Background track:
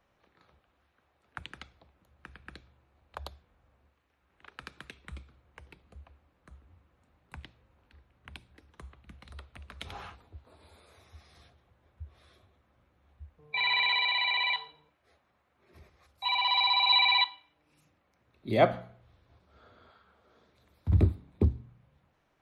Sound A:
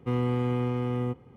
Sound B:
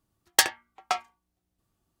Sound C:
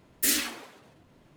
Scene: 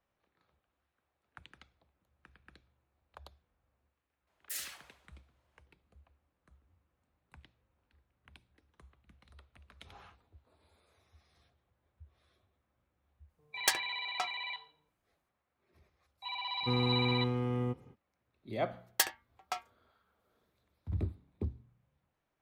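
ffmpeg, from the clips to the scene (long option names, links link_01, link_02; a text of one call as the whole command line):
ffmpeg -i bed.wav -i cue0.wav -i cue1.wav -i cue2.wav -filter_complex "[2:a]asplit=2[link_01][link_02];[0:a]volume=-11.5dB[link_03];[3:a]highpass=frequency=550:width=0.5412,highpass=frequency=550:width=1.3066[link_04];[link_02]equalizer=frequency=14000:width=1.5:gain=9[link_05];[link_04]atrim=end=1.36,asetpts=PTS-STARTPTS,volume=-15.5dB,afade=type=in:duration=0.004:curve=hsin,afade=type=out:start_time=1.356:duration=0.004:curve=hsin,adelay=4270[link_06];[link_01]atrim=end=2,asetpts=PTS-STARTPTS,volume=-9.5dB,afade=type=in:duration=0.004:curve=hsin,afade=type=out:start_time=1.996:duration=0.004:curve=hsin,adelay=13290[link_07];[1:a]atrim=end=1.36,asetpts=PTS-STARTPTS,volume=-4.5dB,afade=type=in:duration=0.05,afade=type=out:start_time=1.31:duration=0.05,adelay=16600[link_08];[link_05]atrim=end=2,asetpts=PTS-STARTPTS,volume=-10.5dB,afade=type=in:duration=0.004:curve=hsin,afade=type=out:start_time=1.996:duration=0.004:curve=hsin,adelay=18610[link_09];[link_03][link_06][link_07][link_08][link_09]amix=inputs=5:normalize=0" out.wav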